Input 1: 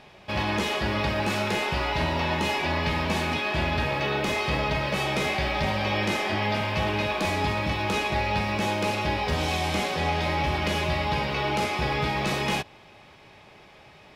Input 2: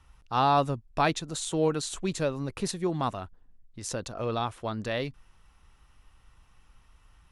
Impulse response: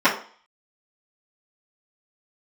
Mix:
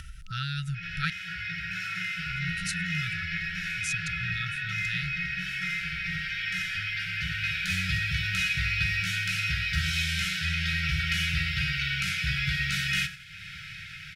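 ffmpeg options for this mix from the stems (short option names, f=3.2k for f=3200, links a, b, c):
-filter_complex "[0:a]dynaudnorm=f=240:g=9:m=6dB,adelay=450,volume=-5.5dB,asplit=3[a][b][c];[b]volume=-22.5dB[d];[c]volume=-14.5dB[e];[1:a]volume=0.5dB,asplit=3[f][g][h];[f]atrim=end=1.1,asetpts=PTS-STARTPTS,afade=t=out:st=1.096:d=0.004:c=hsin[i];[g]atrim=start=1.1:end=2.3,asetpts=PTS-STARTPTS,volume=0[j];[h]atrim=start=2.3,asetpts=PTS-STARTPTS,afade=t=in:d=0.004:c=hsin[k];[i][j][k]concat=n=3:v=0:a=1,asplit=2[l][m];[m]apad=whole_len=644010[n];[a][n]sidechaincompress=threshold=-58dB:ratio=4:attack=16:release=1080[o];[2:a]atrim=start_sample=2205[p];[d][p]afir=irnorm=-1:irlink=0[q];[e]aecho=0:1:91|182|273|364|455:1|0.33|0.109|0.0359|0.0119[r];[o][l][q][r]amix=inputs=4:normalize=0,afftfilt=real='re*(1-between(b*sr/4096,190,1300))':imag='im*(1-between(b*sr/4096,190,1300))':win_size=4096:overlap=0.75,acompressor=mode=upward:threshold=-30dB:ratio=2.5"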